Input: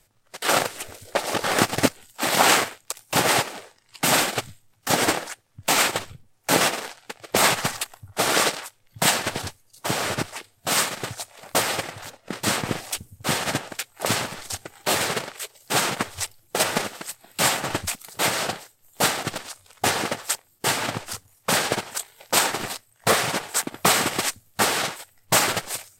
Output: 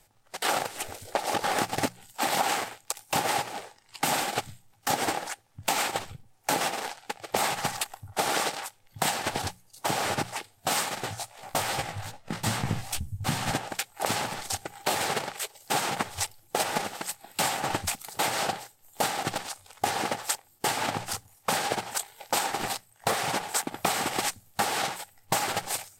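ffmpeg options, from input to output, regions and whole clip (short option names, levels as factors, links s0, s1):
-filter_complex "[0:a]asettb=1/sr,asplit=3[s0][s1][s2];[s0]atrim=end=11.004[s3];[s1]atrim=start=11:end=13.51,asetpts=PTS-STARTPTS,afade=t=in:d=0.004:c=qsin,afade=t=out:st=2.506:d=0.004:c=qsin,flanger=delay=15:depth=5:speed=2.5,asubboost=boost=11.5:cutoff=150[s4];[s2]atrim=start=13.506[s5];[s3][s4]acrossfade=d=0.004:c1=hsin:c2=qsin[s6];[s6][s5]acrossfade=d=0.004:c1=qsin:c2=hsin,equalizer=f=810:w=5.6:g=9,bandreject=f=60:t=h:w=6,bandreject=f=120:t=h:w=6,bandreject=f=180:t=h:w=6,acompressor=threshold=0.0631:ratio=6"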